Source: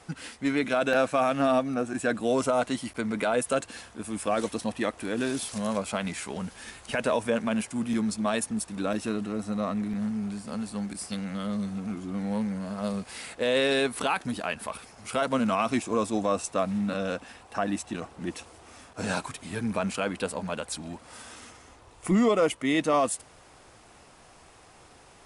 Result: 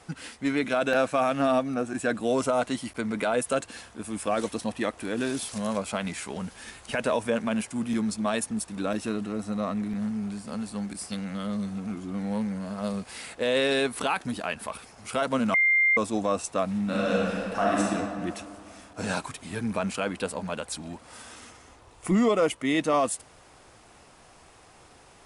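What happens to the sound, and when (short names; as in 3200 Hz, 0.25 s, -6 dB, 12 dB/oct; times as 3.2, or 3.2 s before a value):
15.54–15.97 bleep 2100 Hz -18 dBFS
16.84–17.81 reverb throw, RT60 2.2 s, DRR -5 dB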